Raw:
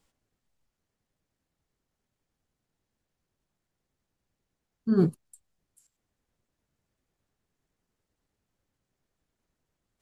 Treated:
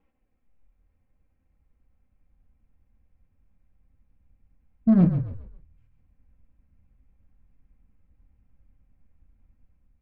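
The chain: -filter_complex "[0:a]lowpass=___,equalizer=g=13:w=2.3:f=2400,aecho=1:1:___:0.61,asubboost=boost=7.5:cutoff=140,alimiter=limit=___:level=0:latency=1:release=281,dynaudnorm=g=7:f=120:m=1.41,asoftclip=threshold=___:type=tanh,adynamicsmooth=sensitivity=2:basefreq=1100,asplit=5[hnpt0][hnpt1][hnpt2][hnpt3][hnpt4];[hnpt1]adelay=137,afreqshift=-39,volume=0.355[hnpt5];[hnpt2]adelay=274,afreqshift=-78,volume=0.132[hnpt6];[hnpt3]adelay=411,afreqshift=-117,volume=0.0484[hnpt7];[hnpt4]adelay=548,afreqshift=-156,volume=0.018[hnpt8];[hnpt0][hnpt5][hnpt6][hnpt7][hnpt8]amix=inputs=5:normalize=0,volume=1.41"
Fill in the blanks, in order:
4000, 3.8, 0.224, 0.188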